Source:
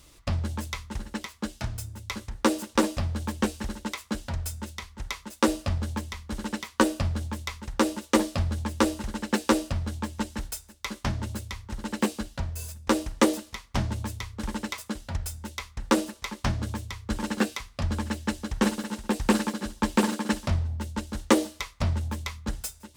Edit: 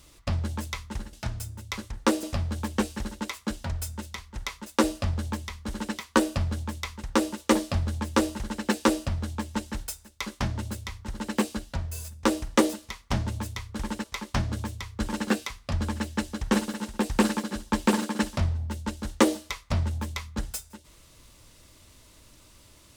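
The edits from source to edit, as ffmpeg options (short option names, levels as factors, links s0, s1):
-filter_complex "[0:a]asplit=4[s0][s1][s2][s3];[s0]atrim=end=1.132[s4];[s1]atrim=start=1.508:end=2.612[s5];[s2]atrim=start=2.868:end=14.682[s6];[s3]atrim=start=16.138[s7];[s4][s5]acrossfade=d=0.004:c1=hsin:c2=hsin[s8];[s8][s6]acrossfade=d=0.004:c1=hsin:c2=hsin[s9];[s9][s7]acrossfade=d=0.004:c1=hsin:c2=hsin"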